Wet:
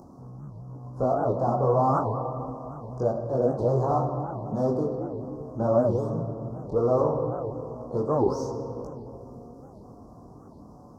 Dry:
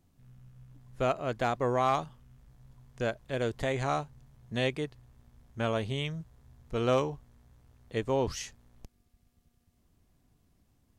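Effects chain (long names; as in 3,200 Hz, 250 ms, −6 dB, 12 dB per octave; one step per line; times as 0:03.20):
mid-hump overdrive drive 23 dB, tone 1,100 Hz, clips at −16.5 dBFS
high-pass filter 54 Hz
high-shelf EQ 4,200 Hz −12 dB
in parallel at −1 dB: upward compression, threshold −30 dBFS
on the sum: multi-voice chorus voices 4, 0.24 Hz, delay 20 ms, depth 3.6 ms
elliptic band-stop filter 1,100–5,300 Hz, stop band 70 dB
on a send at −4 dB: convolution reverb RT60 3.1 s, pre-delay 5 ms
on the sum: wow of a warped record 78 rpm, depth 250 cents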